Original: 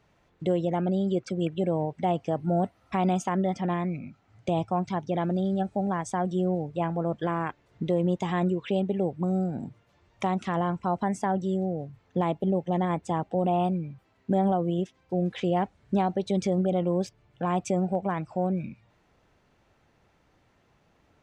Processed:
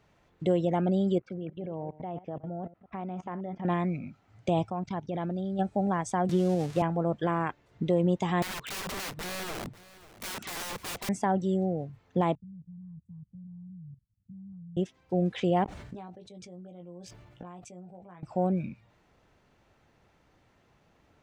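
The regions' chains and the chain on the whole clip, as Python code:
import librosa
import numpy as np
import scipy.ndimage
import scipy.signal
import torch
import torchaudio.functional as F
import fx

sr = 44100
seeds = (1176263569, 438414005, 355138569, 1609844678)

y = fx.chain(x, sr, fx.reverse_delay(ms=120, wet_db=-14.0),
    fx.lowpass(hz=2100.0, slope=12),
    fx.level_steps(step_db=18), at=(1.18, 3.65))
y = fx.chain(y, sr, fx.low_shelf(hz=78.0, db=5.5),
    fx.level_steps(step_db=16),
    fx.lowpass(hz=6700.0, slope=12), at=(4.7, 5.59))
y = fx.chain(y, sr, fx.crossing_spikes(level_db=-28.5),
    fx.lowpass(hz=6800.0, slope=12),
    fx.band_squash(depth_pct=100), at=(6.29, 6.82))
y = fx.chain(y, sr, fx.overflow_wrap(gain_db=32.0),
    fx.echo_single(ms=543, db=-18.0), at=(8.42, 11.09))
y = fx.chain(y, sr, fx.cheby2_bandstop(low_hz=320.0, high_hz=5300.0, order=4, stop_db=40),
    fx.air_absorb(metres=410.0),
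    fx.level_steps(step_db=15), at=(12.35, 14.77))
y = fx.chain(y, sr, fx.gate_flip(shuts_db=-30.0, range_db=-24),
    fx.doubler(ms=17.0, db=-5.0),
    fx.sustainer(db_per_s=32.0), at=(15.64, 18.23))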